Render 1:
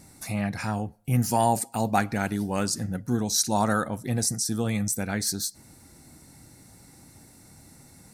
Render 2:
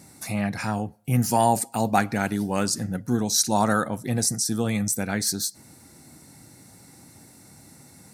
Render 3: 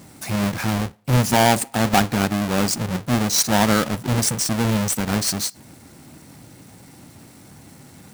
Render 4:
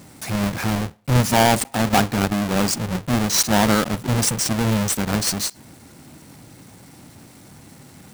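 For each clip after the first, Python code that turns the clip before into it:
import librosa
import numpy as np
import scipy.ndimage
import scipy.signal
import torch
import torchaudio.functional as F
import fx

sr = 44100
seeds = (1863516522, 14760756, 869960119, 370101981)

y1 = scipy.signal.sosfilt(scipy.signal.butter(2, 98.0, 'highpass', fs=sr, output='sos'), x)
y1 = F.gain(torch.from_numpy(y1), 2.5).numpy()
y2 = fx.halfwave_hold(y1, sr)
y3 = fx.block_float(y2, sr, bits=3)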